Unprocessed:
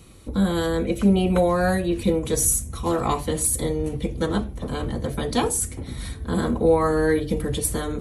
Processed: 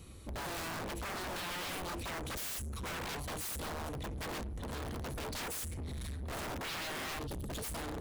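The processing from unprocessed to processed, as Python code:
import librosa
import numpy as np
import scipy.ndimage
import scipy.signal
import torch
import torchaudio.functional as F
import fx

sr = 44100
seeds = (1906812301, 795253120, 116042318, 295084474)

y = fx.spec_erase(x, sr, start_s=7.27, length_s=0.22, low_hz=230.0, high_hz=2800.0)
y = (np.mod(10.0 ** (20.5 / 20.0) * y + 1.0, 2.0) - 1.0) / 10.0 ** (20.5 / 20.0)
y = fx.peak_eq(y, sr, hz=75.0, db=9.5, octaves=0.38)
y = np.clip(y, -10.0 ** (-33.5 / 20.0), 10.0 ** (-33.5 / 20.0))
y = y * 10.0 ** (-5.5 / 20.0)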